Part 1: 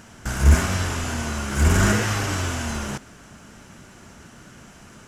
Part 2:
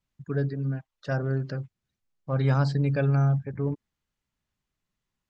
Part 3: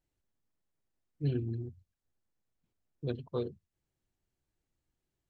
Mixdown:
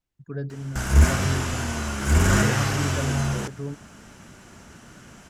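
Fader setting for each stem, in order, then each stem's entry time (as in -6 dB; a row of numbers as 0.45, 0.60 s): -1.0, -4.5, -4.0 dB; 0.50, 0.00, 0.00 s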